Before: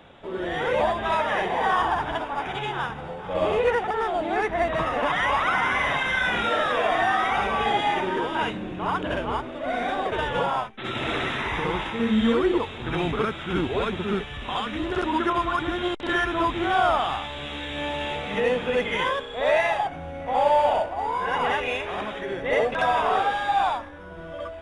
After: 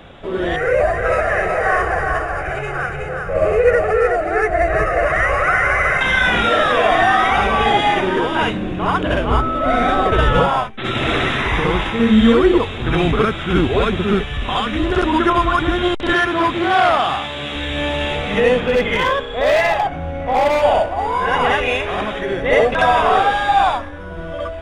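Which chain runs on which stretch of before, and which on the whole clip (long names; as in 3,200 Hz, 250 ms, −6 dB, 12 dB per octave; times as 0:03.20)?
0:00.56–0:06.01: phaser with its sweep stopped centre 930 Hz, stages 6 + single-tap delay 370 ms −4 dB
0:09.30–0:10.45: low-shelf EQ 220 Hz +7.5 dB + steady tone 1,300 Hz −28 dBFS
0:16.14–0:17.56: high-pass filter 120 Hz + saturating transformer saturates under 1,200 Hz
0:18.60–0:20.62: high-shelf EQ 6,100 Hz −9 dB + hard clipping −19 dBFS
whole clip: low-shelf EQ 81 Hz +9.5 dB; notch filter 900 Hz, Q 12; level +8.5 dB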